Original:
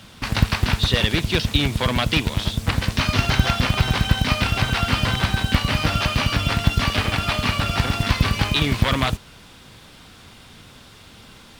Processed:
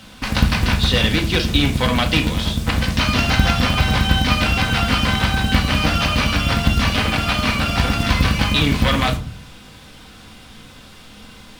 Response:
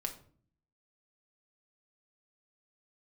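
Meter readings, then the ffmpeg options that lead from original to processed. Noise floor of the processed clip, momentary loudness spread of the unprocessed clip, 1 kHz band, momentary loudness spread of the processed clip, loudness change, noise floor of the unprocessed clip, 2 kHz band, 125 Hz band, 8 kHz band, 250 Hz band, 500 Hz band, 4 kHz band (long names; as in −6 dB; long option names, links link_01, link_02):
−42 dBFS, 3 LU, +3.0 dB, 3 LU, +3.0 dB, −46 dBFS, +3.5 dB, +2.0 dB, +2.5 dB, +4.5 dB, +3.0 dB, +3.0 dB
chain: -filter_complex "[1:a]atrim=start_sample=2205,asetrate=52920,aresample=44100[link_01];[0:a][link_01]afir=irnorm=-1:irlink=0,volume=4.5dB"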